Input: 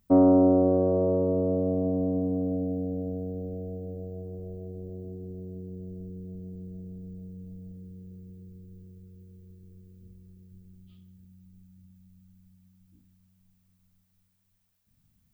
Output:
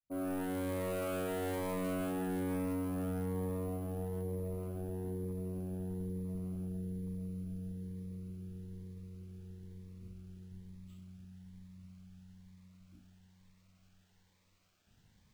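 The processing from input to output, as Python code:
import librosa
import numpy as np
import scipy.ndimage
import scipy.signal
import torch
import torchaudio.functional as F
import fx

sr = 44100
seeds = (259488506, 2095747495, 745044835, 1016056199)

y = fx.fade_in_head(x, sr, length_s=1.66)
y = fx.peak_eq(y, sr, hz=970.0, db=4.0, octaves=1.8)
y = np.repeat(y[::4], 4)[:len(y)]
y = np.clip(10.0 ** (35.0 / 20.0) * y, -1.0, 1.0) / 10.0 ** (35.0 / 20.0)
y = fx.notch_cascade(y, sr, direction='rising', hz=1.1)
y = F.gain(torch.from_numpy(y), 1.0).numpy()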